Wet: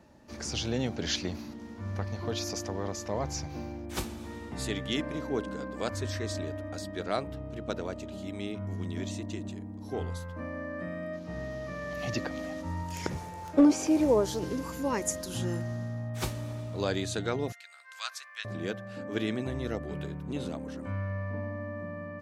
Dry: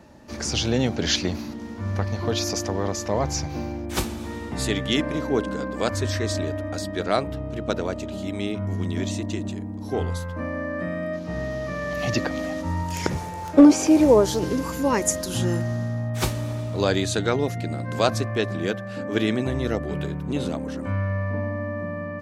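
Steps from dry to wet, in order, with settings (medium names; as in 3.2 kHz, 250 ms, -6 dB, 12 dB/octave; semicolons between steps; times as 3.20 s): 17.52–18.45 s: high-pass 1.3 kHz 24 dB/octave; trim -8.5 dB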